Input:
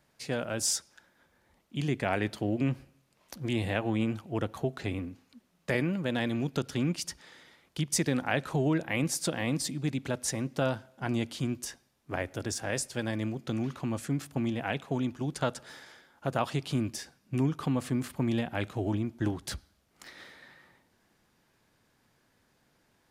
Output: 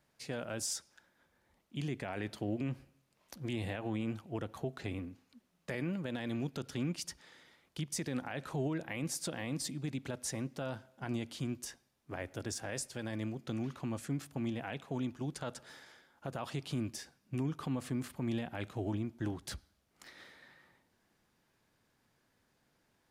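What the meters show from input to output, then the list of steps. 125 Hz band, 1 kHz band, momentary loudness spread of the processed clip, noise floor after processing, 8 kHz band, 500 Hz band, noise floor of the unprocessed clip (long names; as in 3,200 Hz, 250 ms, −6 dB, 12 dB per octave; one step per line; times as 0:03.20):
−7.0 dB, −9.0 dB, 11 LU, −76 dBFS, −7.0 dB, −8.0 dB, −71 dBFS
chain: brickwall limiter −21.5 dBFS, peak gain reduction 9.5 dB
level −5.5 dB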